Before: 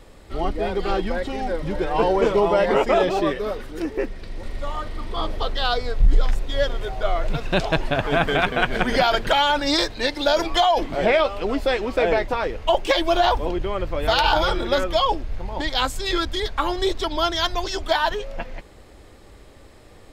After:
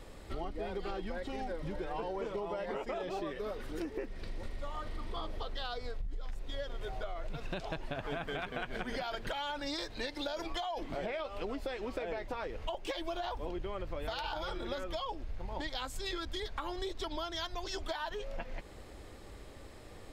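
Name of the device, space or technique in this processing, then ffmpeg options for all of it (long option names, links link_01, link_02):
serial compression, leveller first: -af "acompressor=threshold=-20dB:ratio=2.5,acompressor=threshold=-32dB:ratio=6,volume=-3.5dB"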